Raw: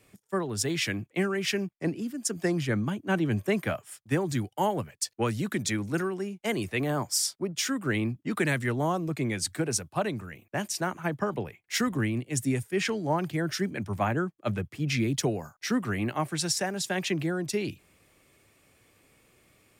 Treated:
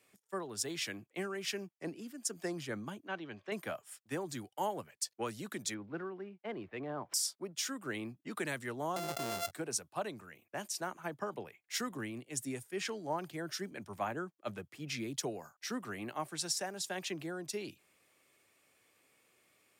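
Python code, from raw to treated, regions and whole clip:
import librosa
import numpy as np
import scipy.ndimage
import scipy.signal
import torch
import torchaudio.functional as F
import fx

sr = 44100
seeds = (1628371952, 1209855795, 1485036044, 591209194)

y = fx.chain(x, sr, fx.lowpass(hz=4500.0, slope=24),
    fx.low_shelf(hz=470.0, db=-9.5), at=(3.07, 3.52))
y = fx.chain(y, sr, fx.median_filter(points=9),
    fx.air_absorb(metres=370.0), at=(5.74, 7.14))
y = fx.chain(y, sr, fx.sample_sort(block=64),
    fx.env_flatten(amount_pct=70), at=(8.96, 9.51))
y = fx.highpass(y, sr, hz=500.0, slope=6)
y = fx.dynamic_eq(y, sr, hz=2100.0, q=1.3, threshold_db=-47.0, ratio=4.0, max_db=-5)
y = F.gain(torch.from_numpy(y), -6.0).numpy()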